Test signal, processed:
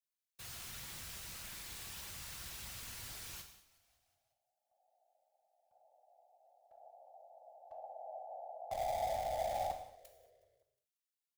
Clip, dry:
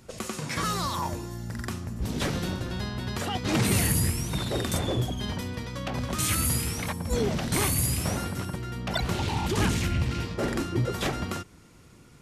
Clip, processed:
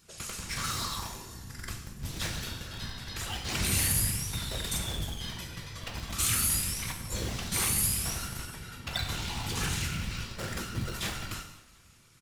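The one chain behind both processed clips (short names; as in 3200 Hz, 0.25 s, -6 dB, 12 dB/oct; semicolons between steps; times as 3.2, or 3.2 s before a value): whisperiser; bell 260 Hz -6 dB 0.21 oct; in parallel at -5 dB: Schmitt trigger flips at -24 dBFS; on the sum: passive tone stack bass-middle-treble 5-5-5; frequency-shifting echo 0.182 s, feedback 60%, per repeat -31 Hz, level -21 dB; non-linear reverb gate 0.26 s falling, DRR 3.5 dB; gain +4.5 dB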